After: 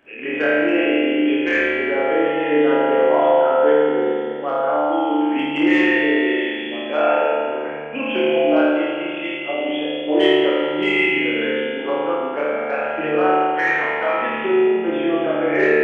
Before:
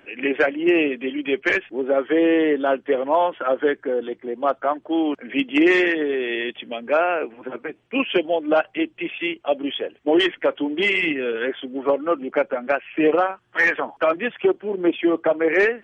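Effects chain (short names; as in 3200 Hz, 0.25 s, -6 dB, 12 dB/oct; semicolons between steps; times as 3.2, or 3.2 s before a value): flutter echo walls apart 4.6 m, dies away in 0.83 s; spring tank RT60 2.3 s, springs 40 ms, chirp 60 ms, DRR -3 dB; gain -6.5 dB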